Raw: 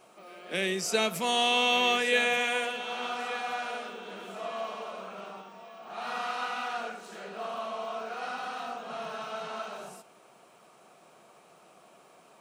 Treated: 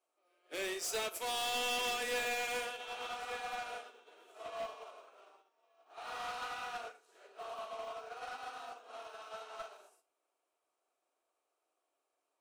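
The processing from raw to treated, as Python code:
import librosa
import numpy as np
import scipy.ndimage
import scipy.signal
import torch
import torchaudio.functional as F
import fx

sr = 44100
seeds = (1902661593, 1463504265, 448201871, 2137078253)

p1 = scipy.signal.sosfilt(scipy.signal.ellip(4, 1.0, 40, 280.0, 'highpass', fs=sr, output='sos'), x)
p2 = fx.peak_eq(p1, sr, hz=14000.0, db=6.5, octaves=1.6)
p3 = 10.0 ** (-29.0 / 20.0) * (np.abs((p2 / 10.0 ** (-29.0 / 20.0) + 3.0) % 4.0 - 2.0) - 1.0)
p4 = p2 + (p3 * librosa.db_to_amplitude(-6.0))
p5 = fx.room_flutter(p4, sr, wall_m=6.6, rt60_s=0.22)
p6 = np.clip(10.0 ** (27.5 / 20.0) * p5, -1.0, 1.0) / 10.0 ** (27.5 / 20.0)
p7 = fx.upward_expand(p6, sr, threshold_db=-46.0, expansion=2.5)
y = p7 * librosa.db_to_amplitude(-5.5)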